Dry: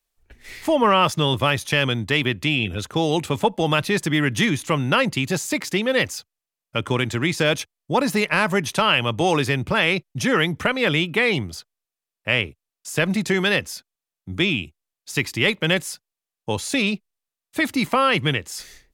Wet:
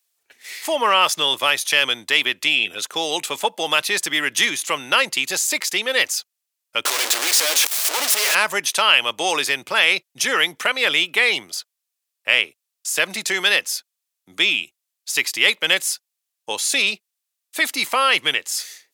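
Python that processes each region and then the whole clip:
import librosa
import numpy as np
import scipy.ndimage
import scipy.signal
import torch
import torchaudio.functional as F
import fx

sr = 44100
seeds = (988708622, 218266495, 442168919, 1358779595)

y = fx.chain(x, sr, fx.clip_1bit(),
    fx.highpass(hz=280.0, slope=24),
    fx.doppler_dist(depth_ms=0.22), at=(6.85, 8.35))
y = scipy.signal.sosfilt(scipy.signal.butter(2, 490.0, 'highpass', fs=sr, output='sos'), y)
y = fx.high_shelf(y, sr, hz=2300.0, db=11.5)
y = y * librosa.db_to_amplitude(-1.5)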